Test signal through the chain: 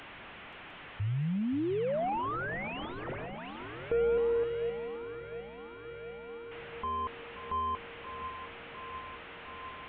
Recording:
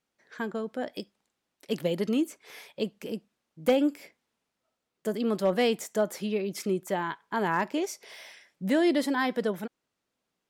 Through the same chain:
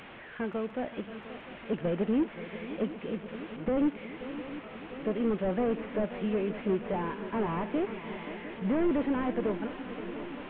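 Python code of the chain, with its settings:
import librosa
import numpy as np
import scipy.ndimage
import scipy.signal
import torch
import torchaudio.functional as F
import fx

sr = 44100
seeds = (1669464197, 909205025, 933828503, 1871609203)

y = fx.delta_mod(x, sr, bps=16000, step_db=-41.0)
y = fx.echo_swing(y, sr, ms=704, ratio=3, feedback_pct=74, wet_db=-14.0)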